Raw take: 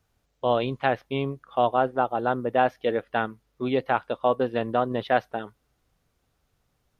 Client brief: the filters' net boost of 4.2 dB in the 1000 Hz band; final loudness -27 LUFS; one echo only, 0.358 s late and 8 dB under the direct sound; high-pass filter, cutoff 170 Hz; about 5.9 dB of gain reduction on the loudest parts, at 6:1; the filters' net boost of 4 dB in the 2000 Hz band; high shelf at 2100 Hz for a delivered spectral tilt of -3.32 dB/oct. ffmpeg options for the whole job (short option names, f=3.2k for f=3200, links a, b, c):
-af "highpass=170,equalizer=f=1k:t=o:g=6,equalizer=f=2k:t=o:g=5,highshelf=f=2.1k:g=-4,acompressor=threshold=-19dB:ratio=6,aecho=1:1:358:0.398,volume=-0.5dB"